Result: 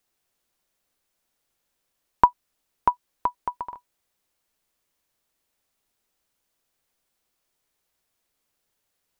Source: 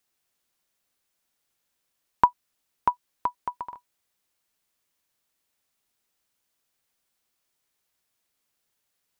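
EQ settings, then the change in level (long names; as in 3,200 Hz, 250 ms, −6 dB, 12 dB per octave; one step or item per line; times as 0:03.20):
low-shelf EQ 63 Hz +10 dB
parametric band 500 Hz +4 dB 2.2 octaves
0.0 dB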